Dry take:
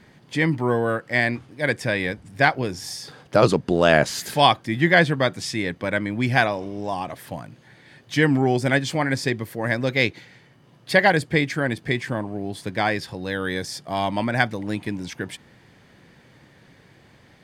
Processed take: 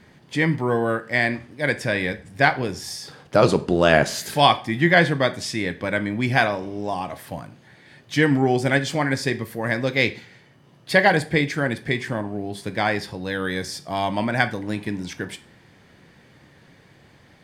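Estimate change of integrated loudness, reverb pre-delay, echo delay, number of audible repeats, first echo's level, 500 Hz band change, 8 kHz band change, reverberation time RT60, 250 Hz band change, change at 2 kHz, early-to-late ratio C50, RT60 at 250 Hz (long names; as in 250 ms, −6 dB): +0.5 dB, 8 ms, no echo audible, no echo audible, no echo audible, +0.5 dB, +0.5 dB, 0.40 s, +0.5 dB, +0.5 dB, 16.5 dB, 0.45 s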